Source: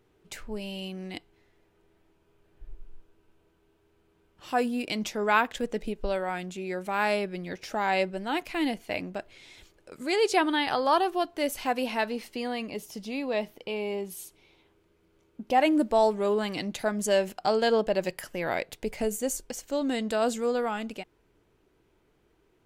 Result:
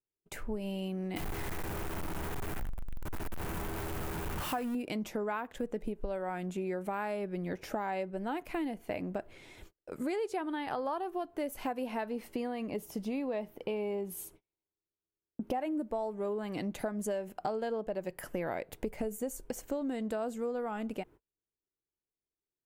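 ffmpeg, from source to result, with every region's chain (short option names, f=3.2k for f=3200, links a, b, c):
-filter_complex "[0:a]asettb=1/sr,asplit=3[a][b][c];[a]atrim=end=1.164[d];[b]atrim=start=1.16:end=4.75,asetpts=PTS-STARTPTS,afade=t=in:d=0.004:c=qsin,afade=t=out:st=3.586:d=0.004:c=qsin,aeval=exprs='val(0)+0.5*0.0299*sgn(val(0))':c=same,equalizer=f=400:t=o:w=1.5:g=-8[e];[c]atrim=start=4.746[f];[d][e]acrossfade=d=0.004:c1=hsin:c2=qsin[g];[g][f]acrossfade=d=0.004:c1=qsin:c2=hsin,agate=range=-38dB:threshold=-54dB:ratio=16:detection=peak,equalizer=f=4.5k:t=o:w=2.3:g=-13,acompressor=threshold=-36dB:ratio=12,volume=4.5dB"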